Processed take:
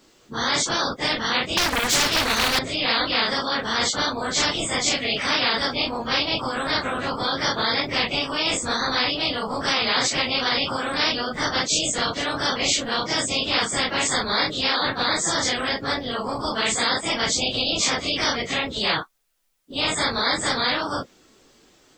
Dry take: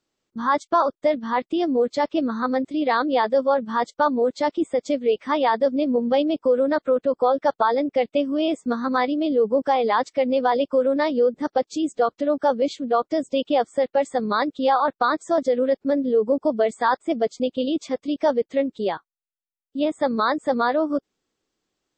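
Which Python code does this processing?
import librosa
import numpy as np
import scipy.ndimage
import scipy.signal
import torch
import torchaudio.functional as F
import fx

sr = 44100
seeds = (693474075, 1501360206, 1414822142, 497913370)

y = fx.phase_scramble(x, sr, seeds[0], window_ms=100)
y = fx.leveller(y, sr, passes=2, at=(1.57, 2.59))
y = fx.spectral_comp(y, sr, ratio=10.0)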